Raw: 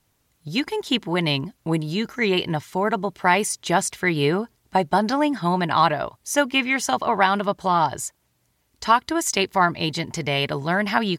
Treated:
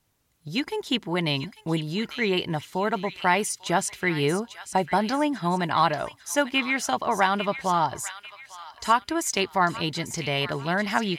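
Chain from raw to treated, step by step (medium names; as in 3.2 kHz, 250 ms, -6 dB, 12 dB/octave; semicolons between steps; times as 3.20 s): feedback echo behind a high-pass 846 ms, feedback 38%, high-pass 1.7 kHz, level -9.5 dB; trim -3.5 dB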